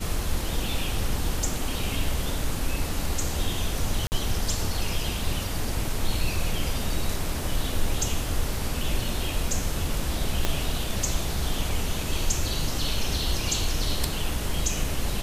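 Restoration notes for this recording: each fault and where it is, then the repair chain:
4.07–4.12 s: dropout 49 ms
10.45 s: pop -8 dBFS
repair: de-click; interpolate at 4.07 s, 49 ms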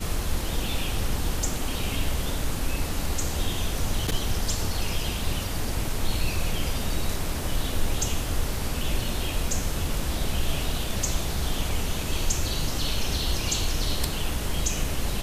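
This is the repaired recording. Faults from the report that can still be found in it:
10.45 s: pop

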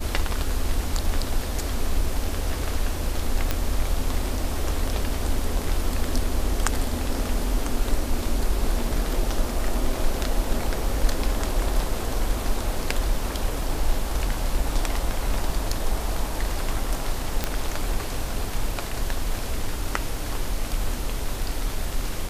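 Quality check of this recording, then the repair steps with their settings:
3.51 s: pop -8 dBFS
17.44 s: pop -8 dBFS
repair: de-click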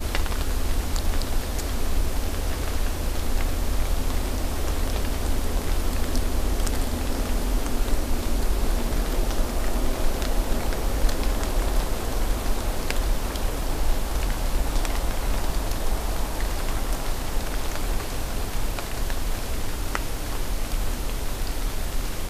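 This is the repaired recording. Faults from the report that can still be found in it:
nothing left

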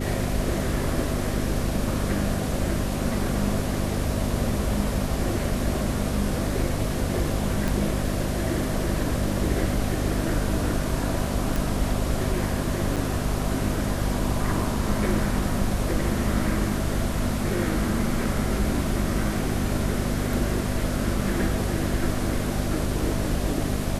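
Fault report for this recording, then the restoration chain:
hum 50 Hz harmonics 5 -29 dBFS
7.68 s: pop
11.56 s: pop
12.96–12.97 s: dropout 6.9 ms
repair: de-click; de-hum 50 Hz, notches 5; interpolate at 12.96 s, 6.9 ms

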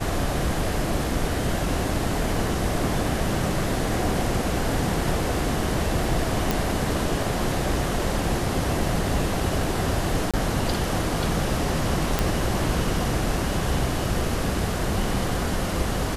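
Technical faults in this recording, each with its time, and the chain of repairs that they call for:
6.51 s: pop
10.31–10.34 s: dropout 26 ms
12.19 s: pop -6 dBFS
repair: de-click; interpolate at 10.31 s, 26 ms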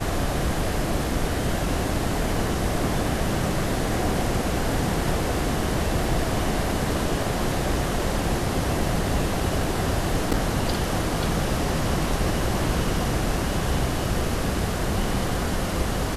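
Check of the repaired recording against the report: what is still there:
nothing left

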